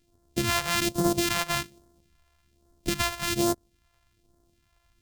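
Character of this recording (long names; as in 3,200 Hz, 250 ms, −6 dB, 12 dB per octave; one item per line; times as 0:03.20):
a buzz of ramps at a fixed pitch in blocks of 128 samples
phaser sweep stages 2, 1.2 Hz, lowest notch 260–2,400 Hz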